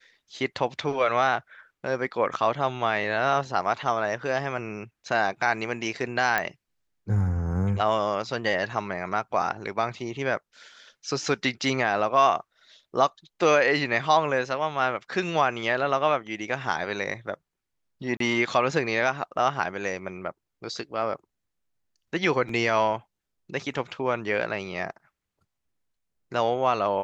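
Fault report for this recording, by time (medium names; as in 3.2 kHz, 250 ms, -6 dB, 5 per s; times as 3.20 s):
6.38 s: pop -10 dBFS
18.17–18.20 s: dropout 33 ms
19.22 s: dropout 3.5 ms
22.49 s: dropout 3.1 ms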